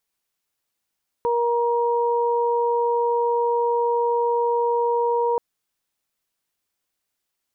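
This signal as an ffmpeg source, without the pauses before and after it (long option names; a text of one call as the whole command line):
ffmpeg -f lavfi -i "aevalsrc='0.1*sin(2*PI*473*t)+0.0794*sin(2*PI*946*t)':duration=4.13:sample_rate=44100" out.wav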